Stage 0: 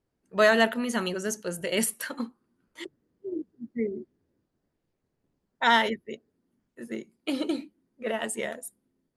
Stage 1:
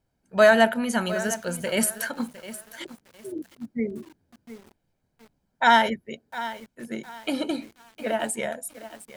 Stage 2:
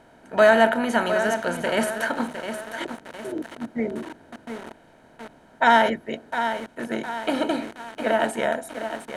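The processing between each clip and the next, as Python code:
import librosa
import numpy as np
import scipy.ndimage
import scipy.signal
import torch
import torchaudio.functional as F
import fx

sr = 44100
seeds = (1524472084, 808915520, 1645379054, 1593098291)

y1 = fx.dynamic_eq(x, sr, hz=3500.0, q=1.1, threshold_db=-41.0, ratio=4.0, max_db=-5)
y1 = y1 + 0.47 * np.pad(y1, (int(1.3 * sr / 1000.0), 0))[:len(y1)]
y1 = fx.echo_crushed(y1, sr, ms=708, feedback_pct=35, bits=7, wet_db=-14.0)
y1 = F.gain(torch.from_numpy(y1), 3.5).numpy()
y2 = fx.bin_compress(y1, sr, power=0.6)
y2 = fx.lowpass(y2, sr, hz=2300.0, slope=6)
y2 = fx.peak_eq(y2, sr, hz=190.0, db=-7.5, octaves=0.25)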